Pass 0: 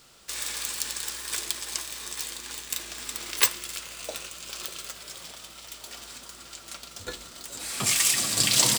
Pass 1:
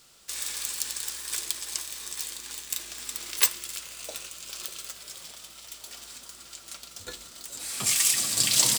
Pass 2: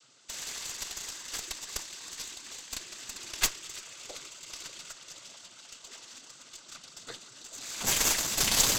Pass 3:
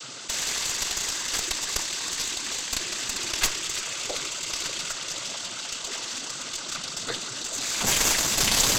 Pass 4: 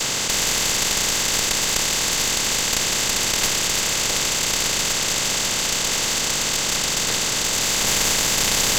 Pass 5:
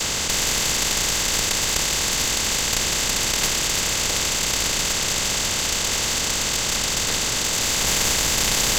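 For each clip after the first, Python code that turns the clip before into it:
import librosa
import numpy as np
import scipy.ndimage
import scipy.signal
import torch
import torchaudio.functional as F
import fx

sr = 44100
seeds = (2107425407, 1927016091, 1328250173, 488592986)

y1 = fx.peak_eq(x, sr, hz=14000.0, db=6.5, octaves=2.4)
y1 = y1 * librosa.db_to_amplitude(-5.5)
y2 = fx.noise_vocoder(y1, sr, seeds[0], bands=16)
y2 = fx.cheby_harmonics(y2, sr, harmonics=(8,), levels_db=(-14,), full_scale_db=-7.5)
y2 = y2 * librosa.db_to_amplitude(-2.5)
y3 = fx.high_shelf(y2, sr, hz=12000.0, db=-7.0)
y3 = fx.env_flatten(y3, sr, amount_pct=50)
y3 = y3 * librosa.db_to_amplitude(2.5)
y4 = fx.bin_compress(y3, sr, power=0.2)
y4 = y4 * librosa.db_to_amplitude(-3.0)
y5 = fx.octave_divider(y4, sr, octaves=2, level_db=0.0)
y5 = y5 * librosa.db_to_amplitude(-1.0)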